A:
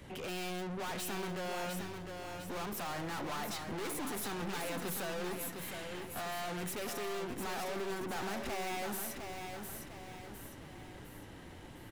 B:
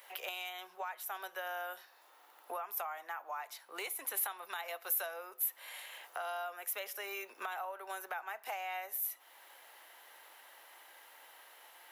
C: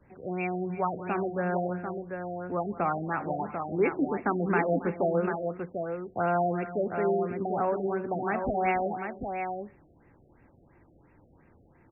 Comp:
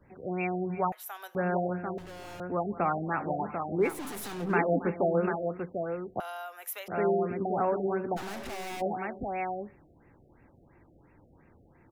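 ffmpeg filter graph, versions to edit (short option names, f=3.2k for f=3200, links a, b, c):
-filter_complex "[1:a]asplit=2[a][b];[0:a]asplit=3[c][d][e];[2:a]asplit=6[f][g][h][i][j][k];[f]atrim=end=0.922[l];[a]atrim=start=0.918:end=1.352[m];[g]atrim=start=1.348:end=1.982[n];[c]atrim=start=1.978:end=2.402[o];[h]atrim=start=2.398:end=4.03[p];[d]atrim=start=3.79:end=4.57[q];[i]atrim=start=4.33:end=6.202[r];[b]atrim=start=6.198:end=6.882[s];[j]atrim=start=6.878:end=8.18[t];[e]atrim=start=8.16:end=8.82[u];[k]atrim=start=8.8[v];[l][m]acrossfade=d=0.004:c1=hsin:c2=hsin[w];[w][n]acrossfade=d=0.004:c1=hsin:c2=hsin[x];[x][o]acrossfade=d=0.004:c1=hsin:c2=hsin[y];[y][p]acrossfade=d=0.004:c1=hsin:c2=hsin[z];[z][q]acrossfade=d=0.24:c1=tri:c2=tri[aa];[aa][r]acrossfade=d=0.24:c1=tri:c2=tri[ab];[ab][s]acrossfade=d=0.004:c1=hsin:c2=hsin[ac];[ac][t]acrossfade=d=0.004:c1=hsin:c2=hsin[ad];[ad][u]acrossfade=d=0.02:c1=tri:c2=tri[ae];[ae][v]acrossfade=d=0.02:c1=tri:c2=tri"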